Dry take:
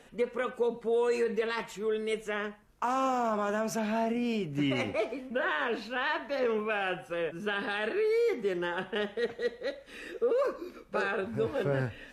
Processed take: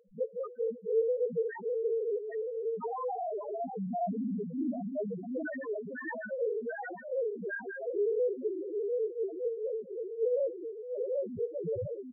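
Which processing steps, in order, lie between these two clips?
ring modulator 25 Hz; bouncing-ball echo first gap 770 ms, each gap 0.9×, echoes 5; loudest bins only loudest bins 1; trim +8.5 dB

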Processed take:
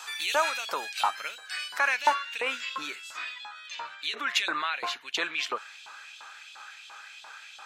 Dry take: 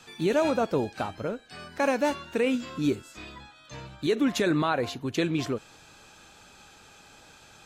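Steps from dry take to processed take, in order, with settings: treble shelf 5.7 kHz +8 dB, from 1.79 s -6.5 dB, from 3.75 s -11 dB; peak limiter -20.5 dBFS, peak gain reduction 5.5 dB; LFO high-pass saw up 2.9 Hz 910–3400 Hz; trim +6.5 dB

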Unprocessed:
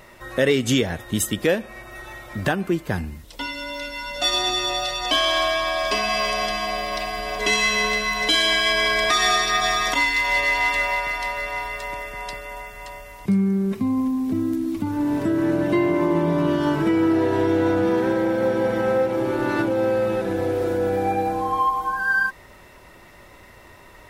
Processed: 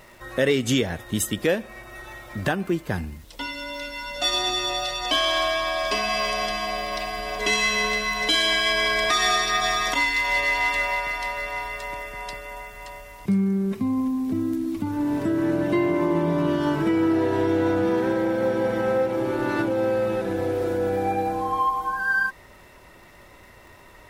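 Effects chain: crackle 320 per s -43 dBFS, from 13.53 s 63 per s; trim -2 dB

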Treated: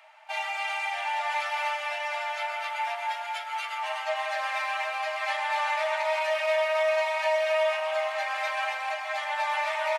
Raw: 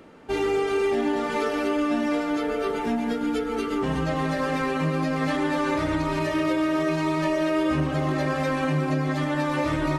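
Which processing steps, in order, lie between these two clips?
rippled Chebyshev high-pass 610 Hz, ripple 9 dB; delay 275 ms -5 dB; trim +4.5 dB

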